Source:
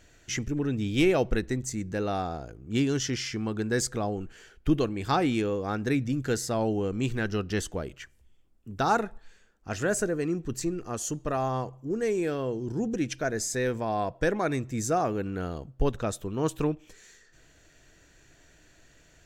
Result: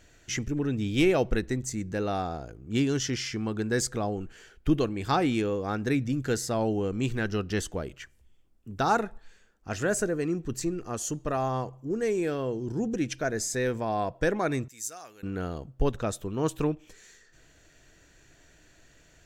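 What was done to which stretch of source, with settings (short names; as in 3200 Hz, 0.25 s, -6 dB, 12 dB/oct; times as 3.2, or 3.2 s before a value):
14.68–15.23 pre-emphasis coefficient 0.97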